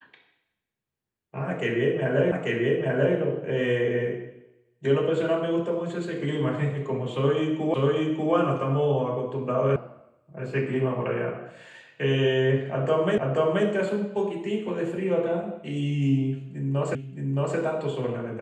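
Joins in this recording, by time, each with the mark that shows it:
0:02.32: the same again, the last 0.84 s
0:07.74: the same again, the last 0.59 s
0:09.76: cut off before it has died away
0:13.18: the same again, the last 0.48 s
0:16.95: the same again, the last 0.62 s

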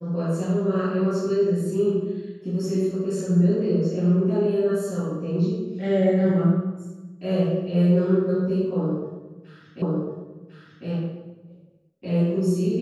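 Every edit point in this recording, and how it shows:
0:09.82: the same again, the last 1.05 s

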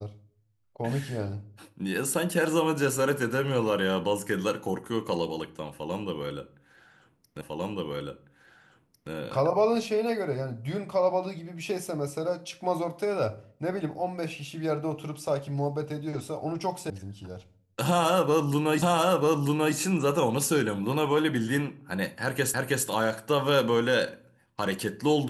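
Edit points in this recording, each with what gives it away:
0:07.41: the same again, the last 1.7 s
0:16.90: cut off before it has died away
0:18.82: the same again, the last 0.94 s
0:22.54: the same again, the last 0.32 s

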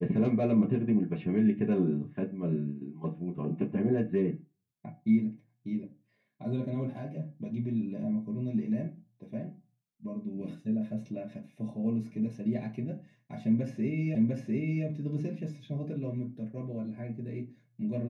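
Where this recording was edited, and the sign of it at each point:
0:14.15: the same again, the last 0.7 s

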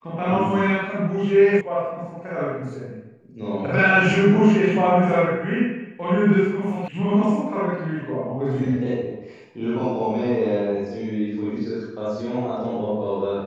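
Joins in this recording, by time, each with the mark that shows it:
0:01.61: cut off before it has died away
0:06.88: cut off before it has died away

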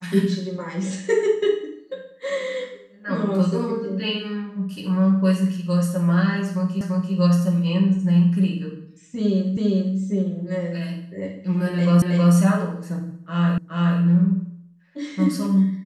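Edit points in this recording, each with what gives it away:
0:06.81: the same again, the last 0.34 s
0:09.57: the same again, the last 0.4 s
0:12.02: the same again, the last 0.32 s
0:13.58: the same again, the last 0.42 s

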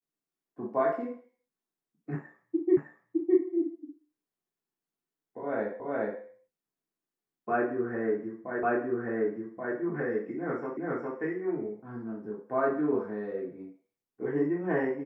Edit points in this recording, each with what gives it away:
0:02.77: the same again, the last 0.61 s
0:05.80: the same again, the last 0.42 s
0:08.63: the same again, the last 1.13 s
0:10.77: the same again, the last 0.41 s

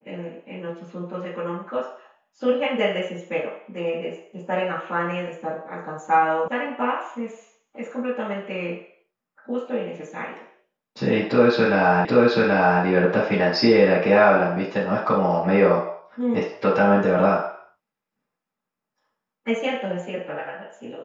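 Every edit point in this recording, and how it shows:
0:06.48: cut off before it has died away
0:12.05: the same again, the last 0.78 s

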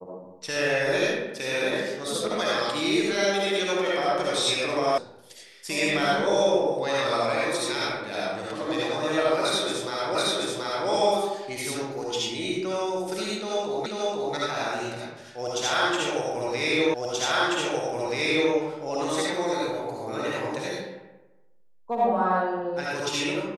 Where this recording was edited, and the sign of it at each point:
0:04.98: cut off before it has died away
0:10.15: the same again, the last 0.73 s
0:13.86: the same again, the last 0.49 s
0:16.94: the same again, the last 1.58 s

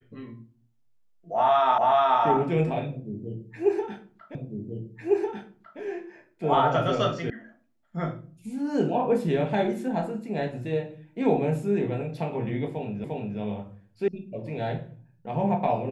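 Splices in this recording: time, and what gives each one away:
0:01.78: the same again, the last 0.43 s
0:04.35: the same again, the last 1.45 s
0:07.30: cut off before it has died away
0:13.04: the same again, the last 0.35 s
0:14.08: cut off before it has died away

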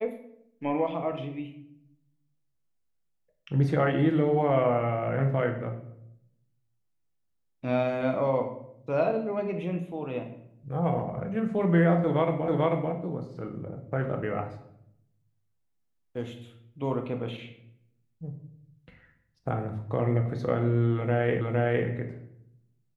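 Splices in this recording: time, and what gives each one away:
0:12.48: the same again, the last 0.44 s
0:21.41: the same again, the last 0.46 s

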